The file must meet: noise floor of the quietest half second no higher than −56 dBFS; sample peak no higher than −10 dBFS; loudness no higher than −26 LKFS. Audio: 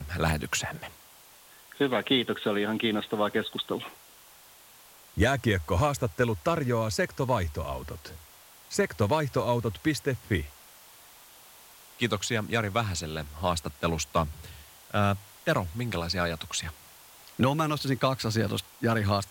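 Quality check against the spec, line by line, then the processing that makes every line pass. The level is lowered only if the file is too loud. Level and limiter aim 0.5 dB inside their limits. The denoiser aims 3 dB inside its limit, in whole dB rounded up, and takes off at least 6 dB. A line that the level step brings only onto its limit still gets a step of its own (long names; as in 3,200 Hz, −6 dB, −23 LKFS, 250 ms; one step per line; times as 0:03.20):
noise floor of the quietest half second −54 dBFS: out of spec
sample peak −12.5 dBFS: in spec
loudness −28.5 LKFS: in spec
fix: broadband denoise 6 dB, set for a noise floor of −54 dBFS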